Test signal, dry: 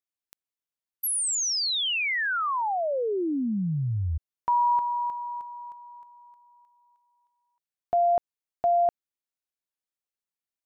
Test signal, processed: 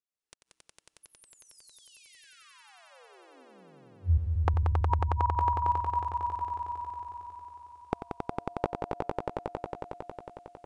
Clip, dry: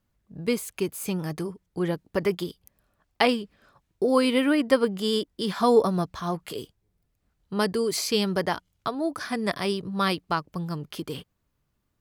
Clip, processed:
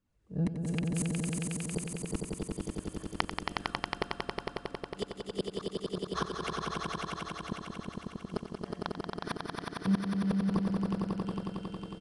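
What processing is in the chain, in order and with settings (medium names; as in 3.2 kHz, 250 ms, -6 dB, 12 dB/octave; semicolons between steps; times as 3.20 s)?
recorder AGC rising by 37 dB/s, up to +20 dB; feedback comb 64 Hz, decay 1 s, harmonics odd, mix 50%; small resonant body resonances 290/450/2700 Hz, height 6 dB, ringing for 25 ms; inverted gate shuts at -15 dBFS, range -41 dB; flange 1.9 Hz, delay 0.6 ms, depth 1.9 ms, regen -38%; on a send: echo with a slow build-up 91 ms, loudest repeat 5, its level -4 dB; on the sum: resampled via 22.05 kHz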